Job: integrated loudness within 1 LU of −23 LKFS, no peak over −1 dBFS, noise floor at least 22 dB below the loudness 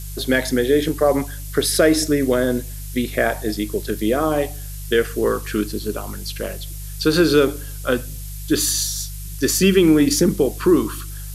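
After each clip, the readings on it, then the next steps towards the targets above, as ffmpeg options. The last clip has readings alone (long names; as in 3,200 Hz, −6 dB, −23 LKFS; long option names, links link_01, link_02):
mains hum 50 Hz; hum harmonics up to 150 Hz; level of the hum −29 dBFS; background noise floor −31 dBFS; target noise floor −42 dBFS; integrated loudness −19.5 LKFS; sample peak −3.0 dBFS; target loudness −23.0 LKFS
→ -af "bandreject=frequency=50:width_type=h:width=4,bandreject=frequency=100:width_type=h:width=4,bandreject=frequency=150:width_type=h:width=4"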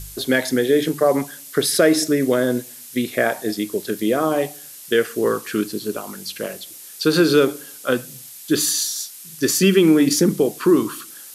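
mains hum none found; background noise floor −40 dBFS; target noise floor −42 dBFS
→ -af "afftdn=noise_reduction=6:noise_floor=-40"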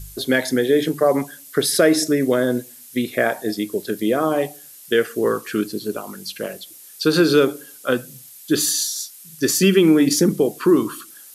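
background noise floor −43 dBFS; integrated loudness −19.5 LKFS; sample peak −3.0 dBFS; target loudness −23.0 LKFS
→ -af "volume=-3.5dB"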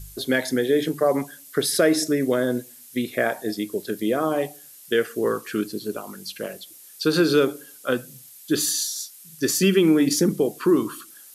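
integrated loudness −23.0 LKFS; sample peak −6.5 dBFS; background noise floor −47 dBFS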